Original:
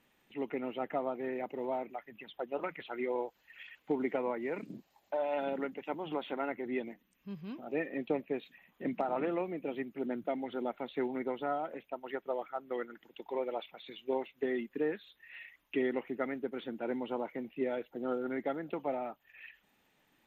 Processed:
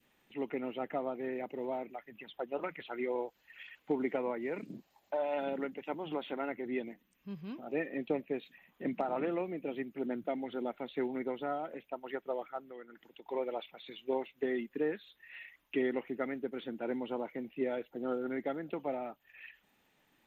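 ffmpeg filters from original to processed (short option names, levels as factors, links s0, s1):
-filter_complex "[0:a]asettb=1/sr,asplit=3[s0][s1][s2];[s0]atrim=end=12.674[s3];[s1]atrim=start=12.67:end=13.28,asetpts=PTS-STARTPTS,afade=t=in:d=0.004:c=qsin,afade=t=out:st=0.606:d=0.004:c=qsin,acompressor=threshold=0.00251:ratio=2:attack=3.2:release=140:knee=1:detection=peak[s4];[s2]atrim=start=13.276[s5];[s3][s4]acrossfade=d=0.004:c1=hsin:c2=qsin[s6];[s6][s5]acrossfade=d=0.004:c1=qsin:c2=hsin,adynamicequalizer=threshold=0.00355:dfrequency=990:dqfactor=1.1:tfrequency=990:tqfactor=1.1:attack=5:release=100:ratio=0.375:range=2:mode=cutabove:tftype=bell"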